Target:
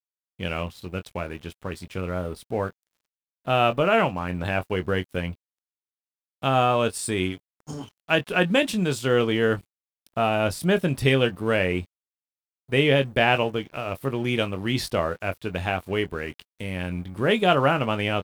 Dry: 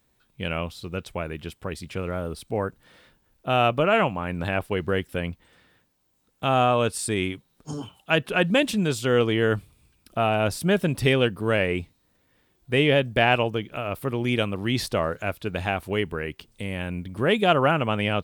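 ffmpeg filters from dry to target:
ffmpeg -i in.wav -filter_complex "[0:a]asplit=2[link_01][link_02];[link_02]adelay=22,volume=-10dB[link_03];[link_01][link_03]amix=inputs=2:normalize=0,aeval=exprs='sgn(val(0))*max(abs(val(0))-0.00473,0)':channel_layout=same" out.wav

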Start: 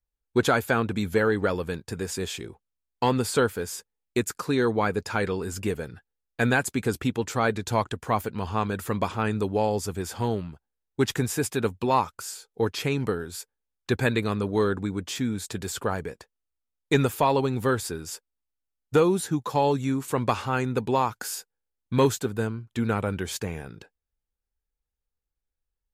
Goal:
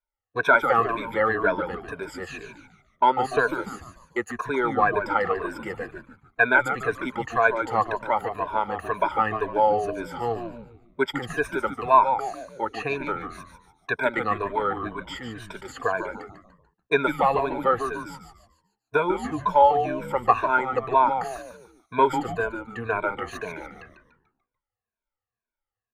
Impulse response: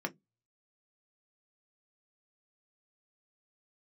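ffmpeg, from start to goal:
-filter_complex "[0:a]afftfilt=real='re*pow(10,21/40*sin(2*PI*(1.6*log(max(b,1)*sr/1024/100)/log(2)-(-2)*(pts-256)/sr)))':imag='im*pow(10,21/40*sin(2*PI*(1.6*log(max(b,1)*sr/1024/100)/log(2)-(-2)*(pts-256)/sr)))':win_size=1024:overlap=0.75,acrossover=split=530 2300:gain=0.112 1 0.0708[link_01][link_02][link_03];[link_01][link_02][link_03]amix=inputs=3:normalize=0,asplit=6[link_04][link_05][link_06][link_07][link_08][link_09];[link_05]adelay=146,afreqshift=-120,volume=-8dB[link_10];[link_06]adelay=292,afreqshift=-240,volume=-15.7dB[link_11];[link_07]adelay=438,afreqshift=-360,volume=-23.5dB[link_12];[link_08]adelay=584,afreqshift=-480,volume=-31.2dB[link_13];[link_09]adelay=730,afreqshift=-600,volume=-39dB[link_14];[link_04][link_10][link_11][link_12][link_13][link_14]amix=inputs=6:normalize=0,volume=2.5dB"

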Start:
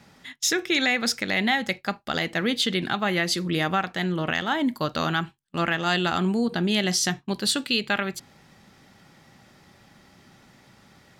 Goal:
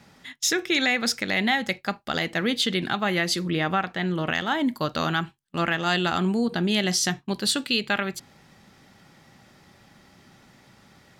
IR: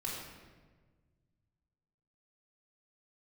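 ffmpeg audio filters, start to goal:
-filter_complex "[0:a]asettb=1/sr,asplit=3[link_01][link_02][link_03];[link_01]atrim=end=3.414[link_04];[link_02]atrim=start=3.41:end=4.11,asetpts=PTS-STARTPTS,afade=type=in:duration=0.004:curve=qsin,afade=type=out:start_time=0.696:duration=0.004:curve=qsin,acrossover=split=4000[link_05][link_06];[link_06]acompressor=threshold=-51dB:ratio=4:attack=1:release=60[link_07];[link_05][link_07]amix=inputs=2:normalize=0[link_08];[link_03]atrim=start=4.106[link_09];[link_04][link_08]acrossfade=duration=0.004:curve1=hsin:curve2=qsin[link_10];[link_10][link_09]acrossfade=duration=0.004:curve1=qsin:curve2=hsin"

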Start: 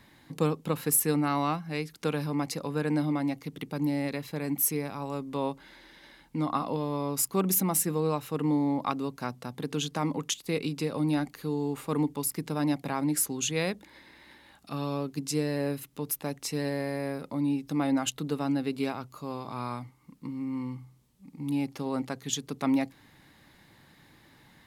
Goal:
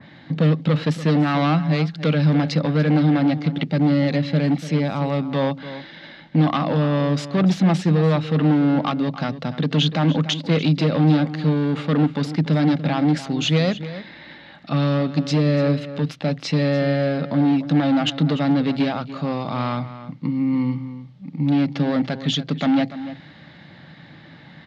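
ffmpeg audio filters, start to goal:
ffmpeg -i in.wav -filter_complex "[0:a]asplit=2[link_01][link_02];[link_02]alimiter=limit=-19.5dB:level=0:latency=1:release=275,volume=3dB[link_03];[link_01][link_03]amix=inputs=2:normalize=0,asoftclip=type=hard:threshold=-20dB,highpass=100,equalizer=frequency=160:width_type=q:width=4:gain=8,equalizer=frequency=410:width_type=q:width=4:gain=-7,equalizer=frequency=610:width_type=q:width=4:gain=4,equalizer=frequency=1000:width_type=q:width=4:gain=-7,equalizer=frequency=2500:width_type=q:width=4:gain=-3,lowpass=frequency=4000:width=0.5412,lowpass=frequency=4000:width=1.3066,asplit=2[link_04][link_05];[link_05]adelay=291.5,volume=-13dB,highshelf=frequency=4000:gain=-6.56[link_06];[link_04][link_06]amix=inputs=2:normalize=0,adynamicequalizer=threshold=0.00631:dfrequency=2500:dqfactor=0.7:tfrequency=2500:tqfactor=0.7:attack=5:release=100:ratio=0.375:range=2:mode=boostabove:tftype=highshelf,volume=5.5dB" out.wav

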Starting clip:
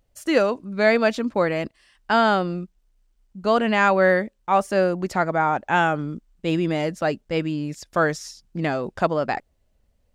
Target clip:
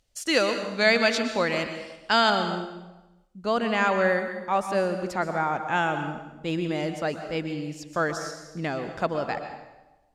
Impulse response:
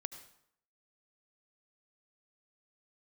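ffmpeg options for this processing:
-filter_complex "[0:a]asetnsamples=nb_out_samples=441:pad=0,asendcmd='2.3 equalizer g 3',equalizer=frequency=5200:width_type=o:width=2.7:gain=14[link_01];[1:a]atrim=start_sample=2205,asetrate=27783,aresample=44100[link_02];[link_01][link_02]afir=irnorm=-1:irlink=0,volume=-5.5dB"

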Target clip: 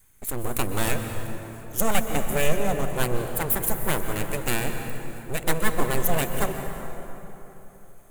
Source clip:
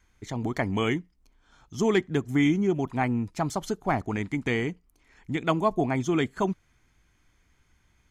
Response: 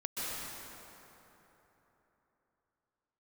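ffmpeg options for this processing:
-filter_complex "[0:a]aeval=exprs='abs(val(0))':channel_layout=same,aexciter=amount=7.2:drive=8:freq=7700,asplit=2[link_01][link_02];[1:a]atrim=start_sample=2205,lowshelf=frequency=150:gain=9[link_03];[link_02][link_03]afir=irnorm=-1:irlink=0,volume=-8.5dB[link_04];[link_01][link_04]amix=inputs=2:normalize=0"

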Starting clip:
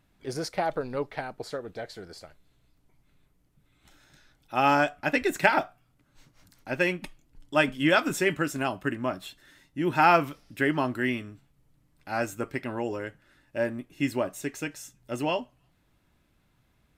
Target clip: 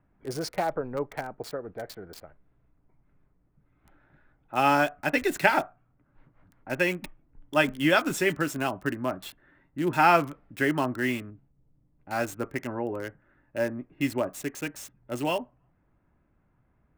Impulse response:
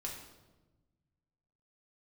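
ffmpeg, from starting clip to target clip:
-filter_complex "[0:a]asettb=1/sr,asplit=3[link_01][link_02][link_03];[link_01]atrim=end=11.304[link_04];[link_02]atrim=start=11.3:end=12.11,asetpts=PTS-STARTPTS,afade=type=in:duration=0.004:curve=qsin,afade=type=out:start_time=0.806:duration=0.004:curve=qsin,equalizer=frequency=1500:width_type=o:width=2:gain=-10.5[link_05];[link_03]atrim=start=12.106[link_06];[link_04][link_05]acrossfade=duration=0.004:curve1=hsin:curve2=qsin[link_07];[link_07][link_06]acrossfade=duration=0.004:curve1=qsin:curve2=hsin,acrossover=split=350|960|1900[link_08][link_09][link_10][link_11];[link_11]acrusher=bits=6:mix=0:aa=0.000001[link_12];[link_08][link_09][link_10][link_12]amix=inputs=4:normalize=0"

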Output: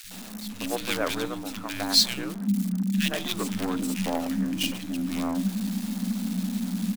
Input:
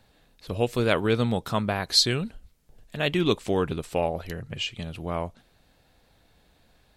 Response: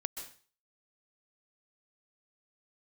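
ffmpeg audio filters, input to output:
-filter_complex "[0:a]aeval=exprs='val(0)+0.5*0.0282*sgn(val(0))':channel_layout=same,equalizer=frequency=260:width=1.2:gain=-15,bandreject=frequency=58.26:width_type=h:width=4,bandreject=frequency=116.52:width_type=h:width=4,bandreject=frequency=174.78:width_type=h:width=4,bandreject=frequency=233.04:width_type=h:width=4,bandreject=frequency=291.3:width_type=h:width=4,bandreject=frequency=349.56:width_type=h:width=4,bandreject=frequency=407.82:width_type=h:width=4,bandreject=frequency=466.08:width_type=h:width=4,bandreject=frequency=524.34:width_type=h:width=4,bandreject=frequency=582.6:width_type=h:width=4,bandreject=frequency=640.86:width_type=h:width=4,bandreject=frequency=699.12:width_type=h:width=4,bandreject=frequency=757.38:width_type=h:width=4,bandreject=frequency=815.64:width_type=h:width=4,bandreject=frequency=873.9:width_type=h:width=4,bandreject=frequency=932.16:width_type=h:width=4,asubboost=boost=6.5:cutoff=99,asettb=1/sr,asplit=3[link_01][link_02][link_03];[link_01]atrim=end=1.244[link_04];[link_02]atrim=start=1.24:end=1.7,asetpts=PTS-STARTPTS,afade=type=in:duration=0.004:curve=qsin,afade=type=out:start_time=0.456:duration=0.004:curve=qsin,acompressor=threshold=-29dB:ratio=6[link_05];[link_03]atrim=start=1.696[link_06];[link_04][link_05]acrossfade=duration=0.004:curve1=hsin:curve2=qsin[link_07];[link_07][link_06]acrossfade=duration=0.004:curve1=qsin:curve2=hsin,acrossover=split=140|5300[link_08][link_09][link_10];[link_08]afreqshift=180[link_11];[link_09]acrusher=bits=5:dc=4:mix=0:aa=0.000001[link_12];[link_11][link_12][link_10]amix=inputs=3:normalize=0,acrossover=split=150|1700[link_13][link_14][link_15];[link_13]adelay=40[link_16];[link_14]adelay=110[link_17];[link_16][link_17][link_15]amix=inputs=3:normalize=0"

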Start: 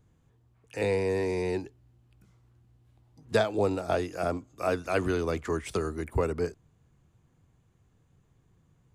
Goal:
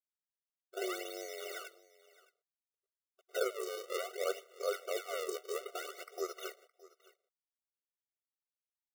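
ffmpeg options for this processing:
ffmpeg -i in.wav -filter_complex "[0:a]agate=range=-15dB:threshold=-52dB:ratio=16:detection=peak,highshelf=frequency=3800:gain=-6.5,areverse,acompressor=threshold=-37dB:ratio=10,areverse,acrusher=bits=10:mix=0:aa=0.000001,afreqshift=-130,acrusher=samples=36:mix=1:aa=0.000001:lfo=1:lforange=57.6:lforate=0.6,asplit=2[link_01][link_02];[link_02]aecho=0:1:616:0.0891[link_03];[link_01][link_03]amix=inputs=2:normalize=0,afftfilt=real='re*eq(mod(floor(b*sr/1024/380),2),1)':imag='im*eq(mod(floor(b*sr/1024/380),2),1)':win_size=1024:overlap=0.75,volume=9dB" out.wav

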